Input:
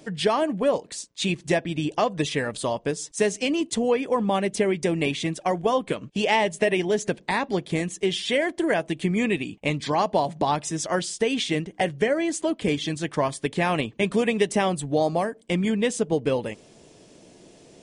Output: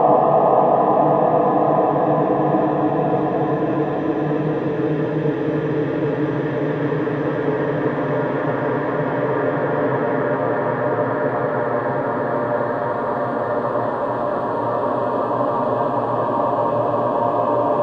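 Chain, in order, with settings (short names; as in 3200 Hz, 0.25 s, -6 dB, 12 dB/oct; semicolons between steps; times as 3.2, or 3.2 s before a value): reverse echo 0.221 s -6.5 dB; low-pass sweep 510 Hz -> 3800 Hz, 1.03–4.83; Paulstretch 29×, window 0.50 s, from 2.08; gain +5 dB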